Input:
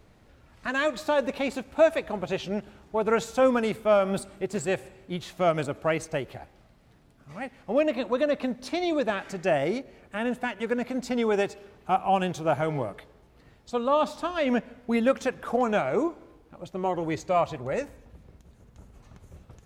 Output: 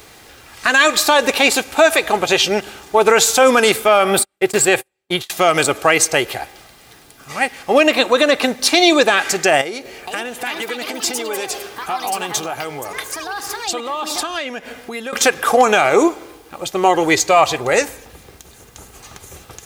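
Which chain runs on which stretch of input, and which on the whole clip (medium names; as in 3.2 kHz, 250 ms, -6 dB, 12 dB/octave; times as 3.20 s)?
3.88–5.30 s: dynamic bell 6.2 kHz, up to -7 dB, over -54 dBFS, Q 1.3 + gate -40 dBFS, range -41 dB
9.61–15.13 s: compression, threshold -38 dBFS + ever faster or slower copies 464 ms, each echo +5 st, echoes 2, each echo -6 dB
whole clip: tilt EQ +3.5 dB/octave; comb 2.5 ms, depth 35%; loudness maximiser +18 dB; trim -1 dB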